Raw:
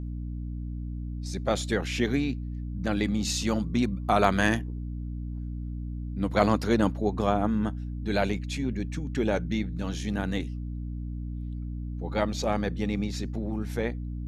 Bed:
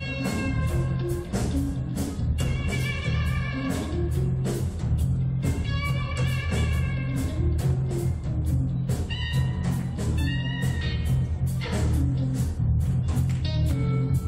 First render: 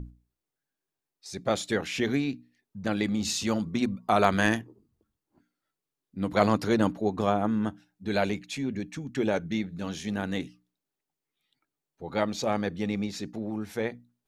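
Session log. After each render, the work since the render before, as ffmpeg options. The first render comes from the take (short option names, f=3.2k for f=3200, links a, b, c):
-af "bandreject=f=60:t=h:w=6,bandreject=f=120:t=h:w=6,bandreject=f=180:t=h:w=6,bandreject=f=240:t=h:w=6,bandreject=f=300:t=h:w=6"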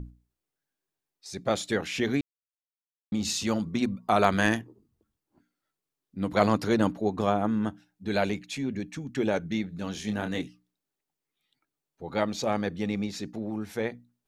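-filter_complex "[0:a]asettb=1/sr,asplit=3[a][b][c];[a]atrim=end=9.924[d];[b]atrim=start=9.92:end=10.42,asetpts=PTS-STARTPTS,afade=t=in:d=0.004:c=qsin,afade=t=out:st=0.496:d=0.004:c=qsin,asplit=2[e][f];[f]adelay=28,volume=-7.5dB[g];[e][g]amix=inputs=2:normalize=0,atrim=end_sample=22050[h];[c]atrim=start=10.416[i];[d][h]acrossfade=d=0.004:c1=hsin:c2=qsin[j];[j][i]acrossfade=d=0.004:c1=qsin:c2=hsin,asplit=3[k][l][m];[k]atrim=end=2.21,asetpts=PTS-STARTPTS,afade=t=out:st=2.206:d=0.004:c=hsin[n];[l]atrim=start=2.21:end=3.12,asetpts=PTS-STARTPTS,volume=0[o];[m]atrim=start=3.12,asetpts=PTS-STARTPTS,afade=t=in:d=0.004:c=hsin[p];[n][o][p]concat=n=3:v=0:a=1"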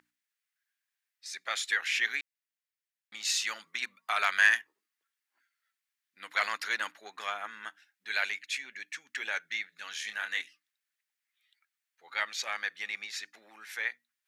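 -af "asoftclip=type=tanh:threshold=-9dB,highpass=f=1.8k:t=q:w=2.5"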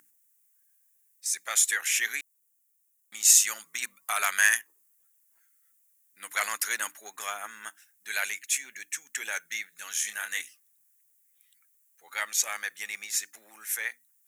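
-af "aexciter=amount=11.3:drive=4.7:freq=6.4k"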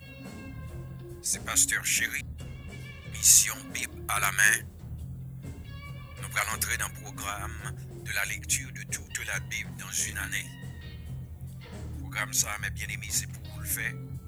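-filter_complex "[1:a]volume=-15.5dB[a];[0:a][a]amix=inputs=2:normalize=0"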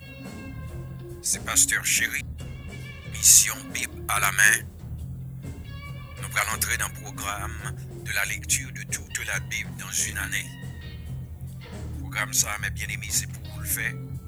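-af "volume=4dB,alimiter=limit=-1dB:level=0:latency=1"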